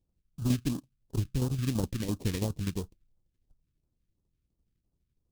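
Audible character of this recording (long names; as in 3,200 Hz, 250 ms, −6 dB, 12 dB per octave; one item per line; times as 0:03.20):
tremolo saw down 12 Hz, depth 60%
aliases and images of a low sample rate 1,400 Hz, jitter 20%
phaser sweep stages 2, 2.9 Hz, lowest notch 770–2,000 Hz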